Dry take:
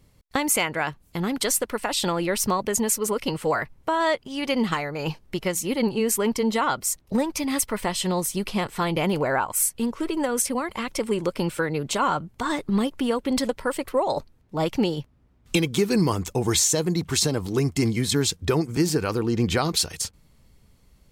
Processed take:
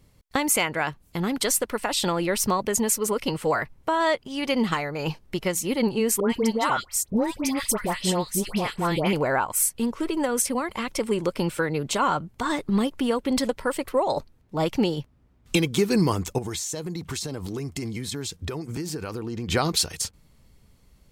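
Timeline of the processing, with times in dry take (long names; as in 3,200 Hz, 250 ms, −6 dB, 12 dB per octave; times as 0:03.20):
0:06.20–0:09.13: all-pass dispersion highs, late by 99 ms, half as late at 1,400 Hz
0:16.38–0:19.49: downward compressor, threshold −28 dBFS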